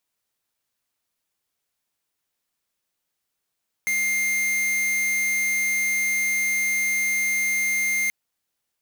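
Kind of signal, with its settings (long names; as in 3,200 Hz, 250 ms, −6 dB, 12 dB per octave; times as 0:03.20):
tone square 2,110 Hz −23 dBFS 4.23 s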